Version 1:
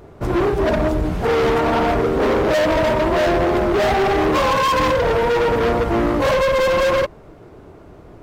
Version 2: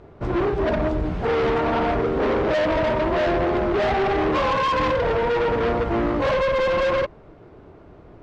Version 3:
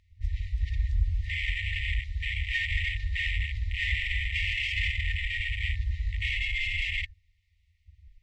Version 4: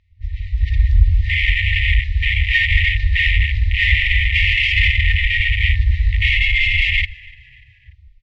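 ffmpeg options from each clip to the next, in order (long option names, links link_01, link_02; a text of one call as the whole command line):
ffmpeg -i in.wav -af "lowpass=4100,volume=-4dB" out.wav
ffmpeg -i in.wav -af "afwtdn=0.0355,afftfilt=real='re*(1-between(b*sr/4096,100,1800))':imag='im*(1-between(b*sr/4096,100,1800))':win_size=4096:overlap=0.75,highshelf=frequency=3900:gain=10.5,volume=2dB" out.wav
ffmpeg -i in.wav -filter_complex "[0:a]lowpass=4000,dynaudnorm=framelen=160:gausssize=7:maxgain=11dB,asplit=4[link_01][link_02][link_03][link_04];[link_02]adelay=293,afreqshift=-48,volume=-23.5dB[link_05];[link_03]adelay=586,afreqshift=-96,volume=-29.9dB[link_06];[link_04]adelay=879,afreqshift=-144,volume=-36.3dB[link_07];[link_01][link_05][link_06][link_07]amix=inputs=4:normalize=0,volume=3.5dB" out.wav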